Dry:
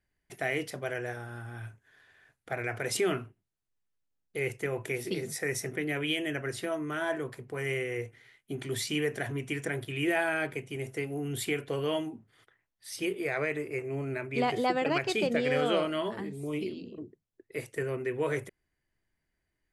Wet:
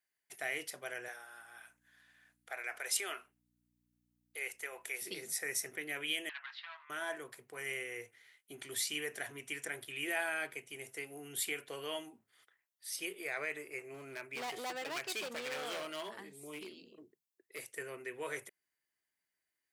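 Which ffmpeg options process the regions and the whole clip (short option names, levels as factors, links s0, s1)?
-filter_complex "[0:a]asettb=1/sr,asplit=3[s0][s1][s2];[s0]atrim=end=1.084[s3];[s1]atrim=start=1.08:end=5.02,asetpts=PTS-STARTPTS,afade=t=in:d=0.004:c=qsin,afade=t=out:st=3.936:d=0.004:c=qsin,highpass=550,aeval=exprs='val(0)+0.00178*(sin(2*PI*60*n/s)+sin(2*PI*2*60*n/s)/2+sin(2*PI*3*60*n/s)/3+sin(2*PI*4*60*n/s)/4+sin(2*PI*5*60*n/s)/5)':c=same[s4];[s2]atrim=start=5.016[s5];[s3][s4]acrossfade=d=0.004:c1=hsin:c2=qsin[s6];[s6][s5]acrossfade=d=0.004:c1=qsin:c2=hsin,asettb=1/sr,asplit=3[s7][s8][s9];[s7]atrim=end=6.294[s10];[s8]atrim=start=6.29:end=6.9,asetpts=PTS-STARTPTS,afade=t=in:d=0.004:c=qsin,afade=t=out:st=0.606:d=0.004:c=qsin,asoftclip=type=hard:threshold=0.0299,asuperpass=centerf=1900:order=12:qfactor=0.56[s11];[s9]atrim=start=6.896[s12];[s10][s11]acrossfade=d=0.004:c1=hsin:c2=qsin[s13];[s13][s12]acrossfade=d=0.004:c1=qsin:c2=hsin,asettb=1/sr,asplit=3[s14][s15][s16];[s14]atrim=end=13.944[s17];[s15]atrim=start=13.94:end=17.73,asetpts=PTS-STARTPTS,afade=t=in:d=0.004:c=qsin,afade=t=out:st=3.786:d=0.004:c=qsin,highpass=f=47:w=0.5412,highpass=f=47:w=1.3066,asoftclip=type=hard:threshold=0.0376[s18];[s16]atrim=start=17.726[s19];[s17][s18]acrossfade=d=0.004:c1=hsin:c2=qsin[s20];[s20][s19]acrossfade=d=0.004:c1=qsin:c2=hsin,highpass=f=1100:p=1,highshelf=f=8000:g=9.5,volume=0.631"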